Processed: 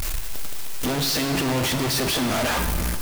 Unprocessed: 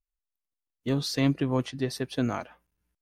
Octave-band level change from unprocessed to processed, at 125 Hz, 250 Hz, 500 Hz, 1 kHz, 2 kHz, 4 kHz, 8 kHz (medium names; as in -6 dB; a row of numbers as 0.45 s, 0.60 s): +3.5 dB, +2.5 dB, +5.0 dB, +10.5 dB, +12.5 dB, +12.0 dB, +16.5 dB